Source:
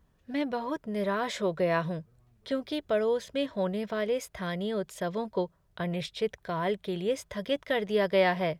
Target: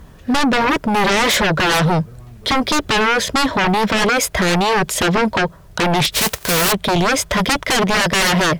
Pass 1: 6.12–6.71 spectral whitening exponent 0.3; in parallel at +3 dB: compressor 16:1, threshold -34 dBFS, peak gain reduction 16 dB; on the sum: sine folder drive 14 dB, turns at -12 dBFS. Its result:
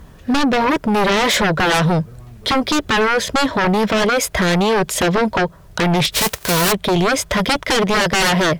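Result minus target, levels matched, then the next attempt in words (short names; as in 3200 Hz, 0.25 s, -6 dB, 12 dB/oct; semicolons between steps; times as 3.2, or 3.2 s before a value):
compressor: peak gain reduction +5.5 dB
6.12–6.71 spectral whitening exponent 0.3; in parallel at +3 dB: compressor 16:1, threshold -28 dBFS, peak gain reduction 10 dB; on the sum: sine folder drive 14 dB, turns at -12 dBFS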